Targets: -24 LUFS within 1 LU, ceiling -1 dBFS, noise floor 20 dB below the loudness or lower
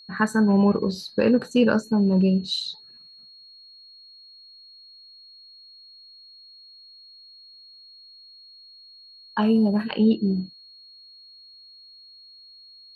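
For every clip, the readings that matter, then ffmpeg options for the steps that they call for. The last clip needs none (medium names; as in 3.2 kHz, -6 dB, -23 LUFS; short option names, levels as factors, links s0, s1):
steady tone 4.3 kHz; tone level -46 dBFS; loudness -22.0 LUFS; peak level -8.0 dBFS; loudness target -24.0 LUFS
-> -af "bandreject=f=4300:w=30"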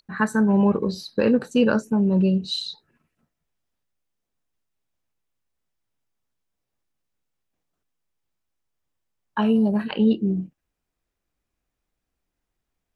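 steady tone not found; loudness -21.5 LUFS; peak level -8.0 dBFS; loudness target -24.0 LUFS
-> -af "volume=0.75"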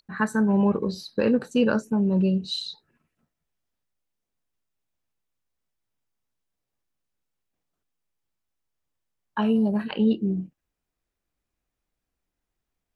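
loudness -24.0 LUFS; peak level -10.5 dBFS; noise floor -84 dBFS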